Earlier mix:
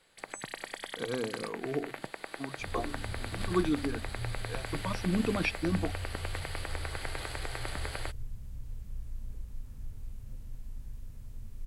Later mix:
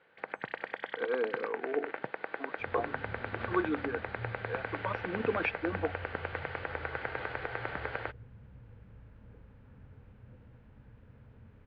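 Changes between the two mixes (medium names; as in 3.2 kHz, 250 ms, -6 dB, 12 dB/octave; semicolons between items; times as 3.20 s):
speech: add Bessel high-pass 370 Hz, order 8; master: add cabinet simulation 110–2700 Hz, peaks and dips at 480 Hz +7 dB, 860 Hz +4 dB, 1.5 kHz +7 dB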